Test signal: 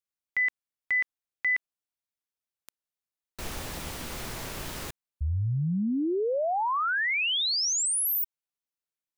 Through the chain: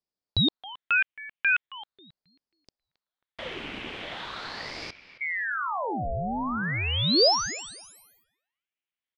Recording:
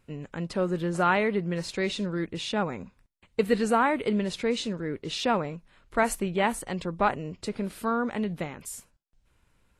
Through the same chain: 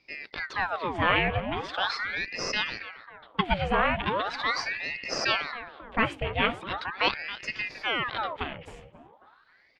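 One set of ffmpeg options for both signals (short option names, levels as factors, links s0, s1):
-filter_complex "[0:a]lowpass=f=2700:t=q:w=4.3,asplit=2[s0][s1];[s1]adelay=270,lowpass=f=1000:p=1,volume=0.266,asplit=2[s2][s3];[s3]adelay=270,lowpass=f=1000:p=1,volume=0.54,asplit=2[s4][s5];[s5]adelay=270,lowpass=f=1000:p=1,volume=0.54,asplit=2[s6][s7];[s7]adelay=270,lowpass=f=1000:p=1,volume=0.54,asplit=2[s8][s9];[s9]adelay=270,lowpass=f=1000:p=1,volume=0.54,asplit=2[s10][s11];[s11]adelay=270,lowpass=f=1000:p=1,volume=0.54[s12];[s0][s2][s4][s6][s8][s10][s12]amix=inputs=7:normalize=0,aeval=exprs='val(0)*sin(2*PI*1300*n/s+1300*0.8/0.4*sin(2*PI*0.4*n/s))':c=same"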